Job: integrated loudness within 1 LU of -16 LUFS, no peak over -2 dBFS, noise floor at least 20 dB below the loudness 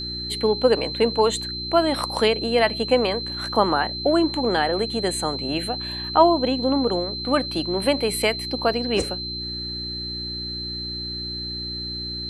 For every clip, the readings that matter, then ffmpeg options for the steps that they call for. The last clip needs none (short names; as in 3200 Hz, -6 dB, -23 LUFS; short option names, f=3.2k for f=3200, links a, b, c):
hum 60 Hz; harmonics up to 360 Hz; hum level -33 dBFS; steady tone 4100 Hz; tone level -29 dBFS; loudness -22.5 LUFS; peak -3.5 dBFS; loudness target -16.0 LUFS
-> -af "bandreject=f=60:t=h:w=4,bandreject=f=120:t=h:w=4,bandreject=f=180:t=h:w=4,bandreject=f=240:t=h:w=4,bandreject=f=300:t=h:w=4,bandreject=f=360:t=h:w=4"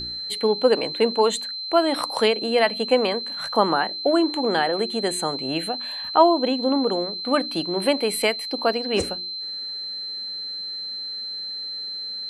hum none; steady tone 4100 Hz; tone level -29 dBFS
-> -af "bandreject=f=4.1k:w=30"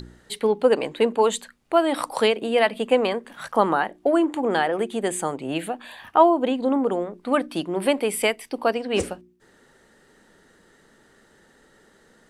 steady tone none; loudness -23.0 LUFS; peak -4.0 dBFS; loudness target -16.0 LUFS
-> -af "volume=7dB,alimiter=limit=-2dB:level=0:latency=1"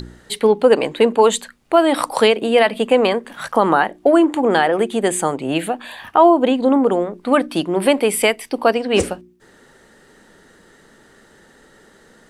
loudness -16.5 LUFS; peak -2.0 dBFS; noise floor -51 dBFS